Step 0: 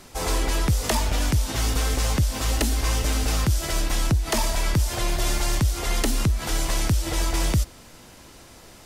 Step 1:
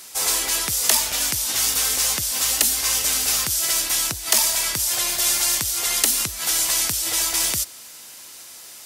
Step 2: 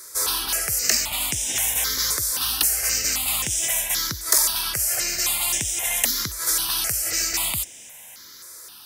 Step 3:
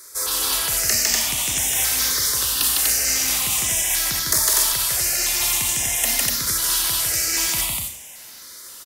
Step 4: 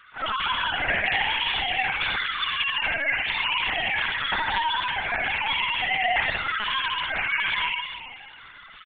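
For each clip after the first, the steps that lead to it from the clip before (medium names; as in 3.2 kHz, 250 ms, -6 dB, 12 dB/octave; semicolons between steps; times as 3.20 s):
tilt EQ +4.5 dB/octave; trim -1.5 dB
stepped phaser 3.8 Hz 770–4400 Hz; trim +1.5 dB
on a send: loudspeakers at several distances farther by 53 m -1 dB, 84 m -2 dB; on the sum: Schroeder reverb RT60 0.49 s, combs from 27 ms, DRR 6 dB; trim -2 dB
formants replaced by sine waves; on a send: multi-tap echo 65/317 ms -4/-11 dB; on the sum: LPC vocoder at 8 kHz pitch kept; trim -6.5 dB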